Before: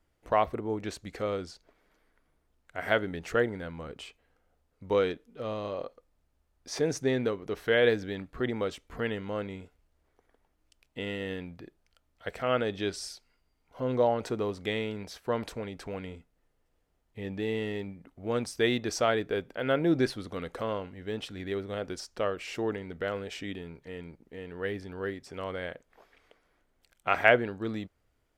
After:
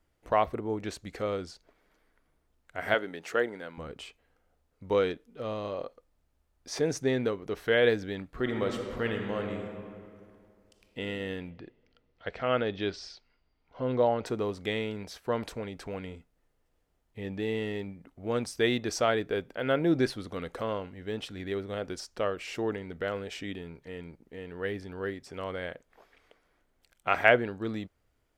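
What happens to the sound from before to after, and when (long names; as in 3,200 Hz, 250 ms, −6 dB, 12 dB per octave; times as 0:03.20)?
0:02.94–0:03.78: Bessel high-pass filter 340 Hz
0:08.27–0:10.99: thrown reverb, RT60 2.3 s, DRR 3 dB
0:11.50–0:14.26: low-pass filter 5,000 Hz 24 dB per octave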